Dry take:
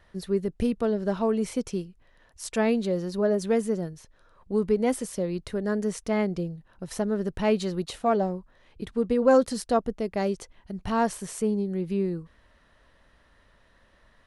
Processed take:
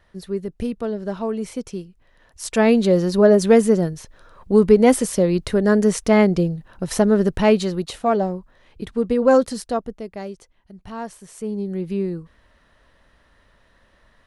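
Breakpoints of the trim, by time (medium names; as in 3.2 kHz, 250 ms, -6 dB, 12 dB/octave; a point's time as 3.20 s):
1.83 s 0 dB
2.94 s +11 dB
7.22 s +11 dB
7.83 s +4.5 dB
9.34 s +4.5 dB
10.41 s -7 dB
11.27 s -7 dB
11.67 s +3 dB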